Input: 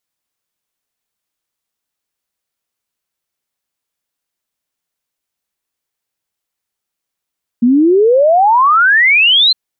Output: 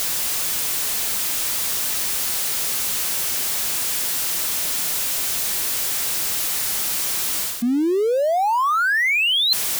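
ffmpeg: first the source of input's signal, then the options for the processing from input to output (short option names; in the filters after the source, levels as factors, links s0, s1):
-f lavfi -i "aevalsrc='0.501*clip(min(t,1.91-t)/0.01,0,1)*sin(2*PI*230*1.91/log(4200/230)*(exp(log(4200/230)*t/1.91)-1))':d=1.91:s=44100"
-af "aeval=exprs='val(0)+0.5*0.0841*sgn(val(0))':c=same,highshelf=f=3000:g=6,areverse,acompressor=threshold=0.126:ratio=10,areverse"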